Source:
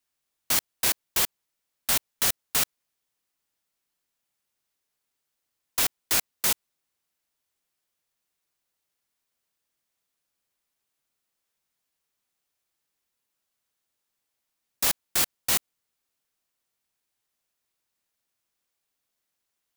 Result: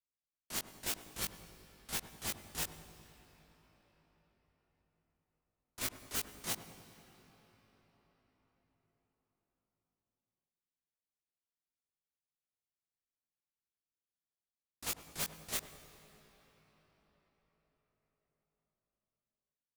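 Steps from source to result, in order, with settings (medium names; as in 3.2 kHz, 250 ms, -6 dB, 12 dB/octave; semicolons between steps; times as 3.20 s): block-companded coder 3-bit; low-pass 12 kHz 12 dB/octave; gate -20 dBFS, range -35 dB; bass shelf 420 Hz +9.5 dB; in parallel at +2 dB: peak limiter -37.5 dBFS, peak gain reduction 9 dB; on the sum: integer overflow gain 33.5 dB; doubling 19 ms -3.5 dB; filtered feedback delay 100 ms, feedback 78%, low-pass 910 Hz, level -10 dB; on a send at -14 dB: reverberation RT60 6.0 s, pre-delay 94 ms; on the sum: trim +4 dB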